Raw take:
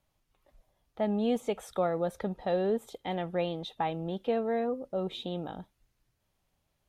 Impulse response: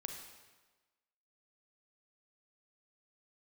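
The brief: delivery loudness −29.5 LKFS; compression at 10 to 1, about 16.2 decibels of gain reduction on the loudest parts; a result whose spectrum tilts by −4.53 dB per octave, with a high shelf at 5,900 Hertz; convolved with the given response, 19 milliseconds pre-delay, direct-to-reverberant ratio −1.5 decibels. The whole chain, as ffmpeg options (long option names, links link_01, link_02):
-filter_complex "[0:a]highshelf=frequency=5900:gain=5.5,acompressor=threshold=-41dB:ratio=10,asplit=2[link_01][link_02];[1:a]atrim=start_sample=2205,adelay=19[link_03];[link_02][link_03]afir=irnorm=-1:irlink=0,volume=3.5dB[link_04];[link_01][link_04]amix=inputs=2:normalize=0,volume=12.5dB"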